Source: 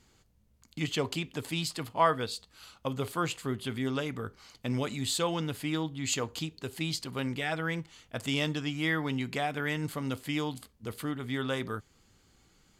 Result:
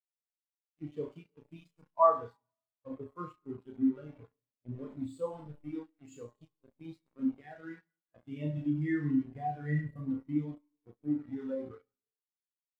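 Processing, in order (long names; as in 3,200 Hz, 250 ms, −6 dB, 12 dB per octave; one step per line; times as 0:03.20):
0:08.57–0:10.09: parametric band 68 Hz +11.5 dB 1.6 octaves
flutter between parallel walls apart 5.8 metres, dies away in 0.66 s
dynamic equaliser 4,300 Hz, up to −5 dB, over −47 dBFS, Q 0.96
bit reduction 5 bits
four-comb reverb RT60 1.6 s, combs from 29 ms, DRR 11.5 dB
every bin expanded away from the loudest bin 2.5 to 1
level −1 dB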